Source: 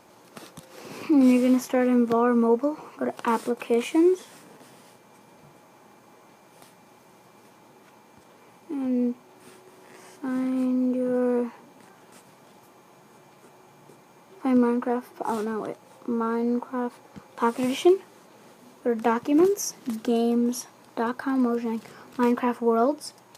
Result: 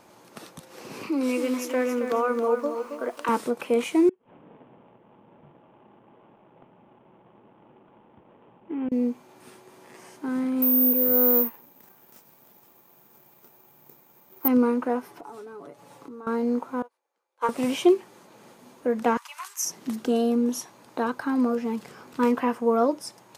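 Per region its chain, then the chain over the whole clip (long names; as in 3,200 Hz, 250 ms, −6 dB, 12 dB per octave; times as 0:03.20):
0:01.09–0:03.29: high-pass filter 420 Hz + parametric band 800 Hz −7.5 dB 0.28 octaves + feedback echo at a low word length 272 ms, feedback 35%, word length 9 bits, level −8 dB
0:04.09–0:08.92: running median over 25 samples + Butterworth low-pass 3,300 Hz 72 dB per octave + gate with flip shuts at −22 dBFS, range −28 dB
0:10.62–0:14.48: mu-law and A-law mismatch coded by A + notch filter 4,300 Hz, Q 24 + bad sample-rate conversion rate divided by 3×, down none, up zero stuff
0:15.08–0:16.27: comb filter 7 ms, depth 62% + downward compressor 5 to 1, threshold −40 dBFS
0:16.82–0:17.49: high-pass filter 410 Hz 24 dB per octave + expander for the loud parts 2.5 to 1, over −40 dBFS
0:19.17–0:19.65: elliptic high-pass filter 980 Hz, stop band 70 dB + parametric band 8,800 Hz +6 dB 1 octave
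whole clip: no processing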